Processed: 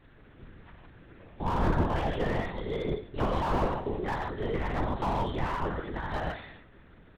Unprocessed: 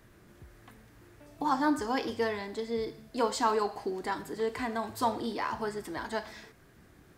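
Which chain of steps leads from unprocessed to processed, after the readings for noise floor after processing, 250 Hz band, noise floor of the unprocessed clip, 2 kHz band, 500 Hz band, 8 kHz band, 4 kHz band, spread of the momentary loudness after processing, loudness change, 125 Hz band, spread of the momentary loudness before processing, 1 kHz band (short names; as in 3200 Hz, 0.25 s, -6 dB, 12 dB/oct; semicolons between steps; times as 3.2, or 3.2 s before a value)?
-55 dBFS, +0.5 dB, -59 dBFS, 0.0 dB, 0.0 dB, under -10 dB, -2.5 dB, 7 LU, +1.0 dB, +16.5 dB, 9 LU, -0.5 dB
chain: block floating point 5-bit; non-linear reverb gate 0.18 s flat, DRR -0.5 dB; LPC vocoder at 8 kHz whisper; speakerphone echo 0.2 s, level -23 dB; slew limiter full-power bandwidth 36 Hz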